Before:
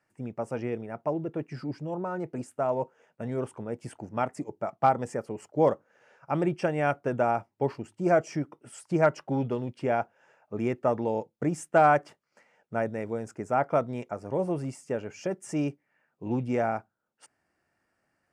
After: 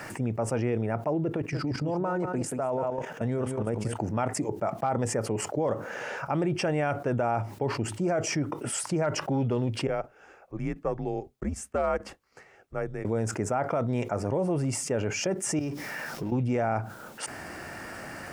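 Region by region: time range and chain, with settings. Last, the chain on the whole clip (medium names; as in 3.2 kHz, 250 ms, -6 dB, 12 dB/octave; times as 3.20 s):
1.36–3.96 s: delay 182 ms -9.5 dB + level held to a coarse grid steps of 12 dB
9.87–13.05 s: frequency shift -90 Hz + upward expansion 2.5:1, over -38 dBFS
15.59–16.32 s: companding laws mixed up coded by mu + peaking EQ 5.3 kHz +10 dB 0.25 oct + compression 3:1, threshold -48 dBFS
whole clip: dynamic bell 110 Hz, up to +6 dB, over -53 dBFS, Q 4.8; peak limiter -20 dBFS; level flattener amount 70%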